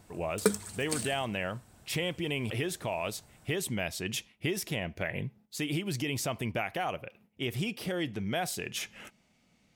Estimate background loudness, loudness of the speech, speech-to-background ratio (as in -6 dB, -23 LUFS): -34.0 LUFS, -34.5 LUFS, -0.5 dB